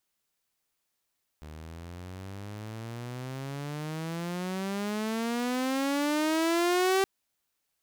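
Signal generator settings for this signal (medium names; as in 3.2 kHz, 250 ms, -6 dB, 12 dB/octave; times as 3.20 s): gliding synth tone saw, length 5.62 s, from 75.2 Hz, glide +28.5 st, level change +20 dB, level -19.5 dB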